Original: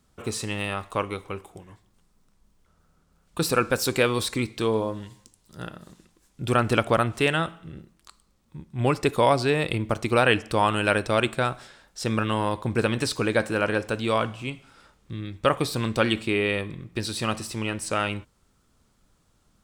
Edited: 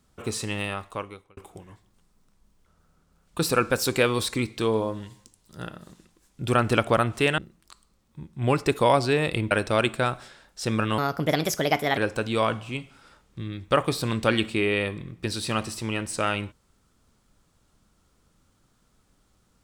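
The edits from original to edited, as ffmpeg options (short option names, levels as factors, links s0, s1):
-filter_complex "[0:a]asplit=6[s0][s1][s2][s3][s4][s5];[s0]atrim=end=1.37,asetpts=PTS-STARTPTS,afade=t=out:st=0.59:d=0.78[s6];[s1]atrim=start=1.37:end=7.382,asetpts=PTS-STARTPTS,afade=t=in:d=0.004:c=hsin[s7];[s2]atrim=start=7.748:end=9.882[s8];[s3]atrim=start=10.898:end=12.374[s9];[s4]atrim=start=12.37:end=13.7,asetpts=PTS-STARTPTS,asetrate=59094,aresample=44100[s10];[s5]atrim=start=13.696[s11];[s6][s7]concat=n=2:v=0:a=1[s12];[s12][s8]acrossfade=d=0.004:c1=hsin:c2=hsin[s13];[s13][s9]acrossfade=d=0.004:c1=hsin:c2=hsin[s14];[s14][s10]acrossfade=d=0.004:c1=hsin:c2=hsin[s15];[s15][s11]acrossfade=d=0.004:c1=hsin:c2=hsin"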